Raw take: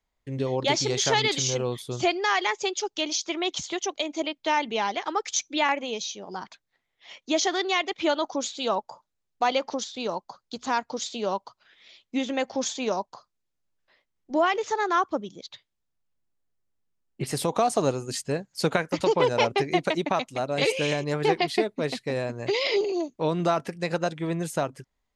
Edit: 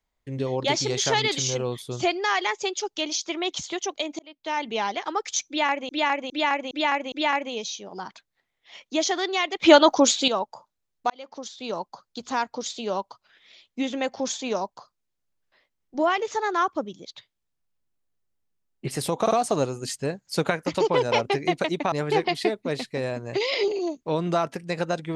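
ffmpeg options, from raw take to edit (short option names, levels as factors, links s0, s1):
-filter_complex "[0:a]asplit=12[s0][s1][s2][s3][s4][s5][s6][s7][s8][s9][s10][s11];[s0]atrim=end=4.19,asetpts=PTS-STARTPTS,afade=t=out:st=4.186:d=0.004:c=hsin[s12];[s1]atrim=start=4.19:end=5.892,asetpts=PTS-STARTPTS,afade=t=in:d=0.54[s13];[s2]atrim=start=5.478:end=5.892[s14];[s3]atrim=start=5.478:end=5.892[s15];[s4]atrim=start=5.478:end=5.892[s16];[s5]atrim=start=5.478:end=7.972[s17];[s6]atrim=start=7.968:end=8.642,asetpts=PTS-STARTPTS,volume=3.55[s18];[s7]atrim=start=8.638:end=9.46,asetpts=PTS-STARTPTS,afade=t=out:st=0.818:d=0.004:c=hsin[s19];[s8]atrim=start=9.46:end=17.622,asetpts=PTS-STARTPTS,afade=t=in:d=0.68[s20];[s9]atrim=start=17.568:end=17.622[s21];[s10]atrim=start=17.568:end=20.182[s22];[s11]atrim=start=21.048[s23];[s12][s13]concat=n=2:v=0:a=1[s24];[s24][s14]acrossfade=d=0.004:c1=hsin:c2=hsin[s25];[s25][s15]acrossfade=d=0.004:c1=hsin:c2=hsin[s26];[s26][s16]acrossfade=d=0.004:c1=hsin:c2=hsin[s27];[s27][s17]acrossfade=d=0.004:c1=hsin:c2=hsin[s28];[s28][s18]acrossfade=d=0.004:c1=hsin:c2=hsin[s29];[s19][s20]concat=n=2:v=0:a=1[s30];[s29][s30]acrossfade=d=0.004:c1=hsin:c2=hsin[s31];[s31][s21]acrossfade=d=0.004:c1=hsin:c2=hsin[s32];[s32][s22]acrossfade=d=0.004:c1=hsin:c2=hsin[s33];[s33][s23]acrossfade=d=0.004:c1=hsin:c2=hsin"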